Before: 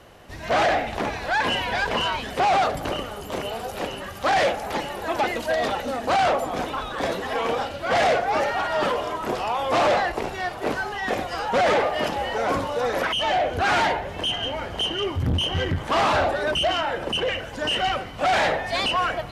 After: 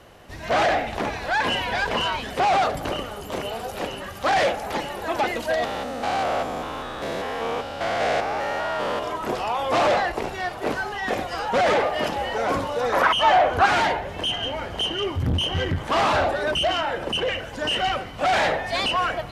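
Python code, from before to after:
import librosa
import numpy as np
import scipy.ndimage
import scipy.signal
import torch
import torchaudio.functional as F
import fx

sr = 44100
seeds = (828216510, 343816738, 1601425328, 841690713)

y = fx.spec_steps(x, sr, hold_ms=200, at=(5.64, 9.03))
y = fx.peak_eq(y, sr, hz=1100.0, db=11.5, octaves=1.1, at=(12.92, 13.66))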